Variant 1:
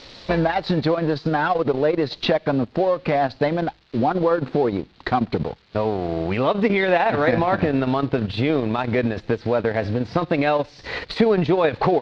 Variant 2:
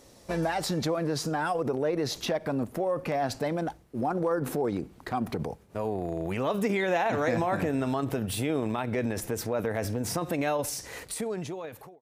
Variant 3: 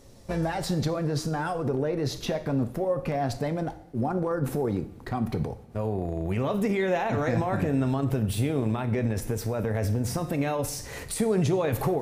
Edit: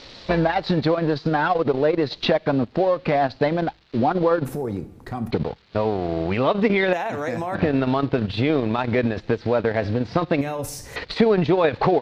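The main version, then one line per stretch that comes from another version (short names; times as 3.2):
1
4.45–5.31 from 3
6.93–7.55 from 2
10.41–10.96 from 3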